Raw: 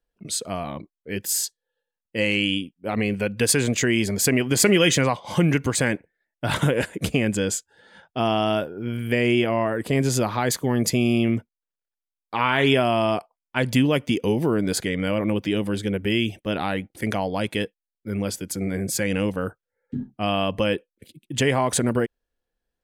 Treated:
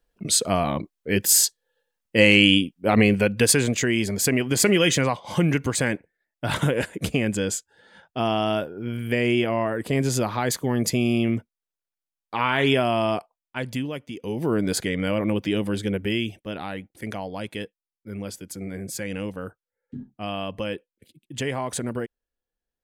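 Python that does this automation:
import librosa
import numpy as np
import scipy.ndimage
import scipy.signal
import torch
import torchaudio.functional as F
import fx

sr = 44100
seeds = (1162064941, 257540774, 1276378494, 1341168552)

y = fx.gain(x, sr, db=fx.line((2.99, 7.0), (3.78, -1.5), (13.18, -1.5), (14.12, -13.5), (14.53, -0.5), (15.94, -0.5), (16.53, -7.0)))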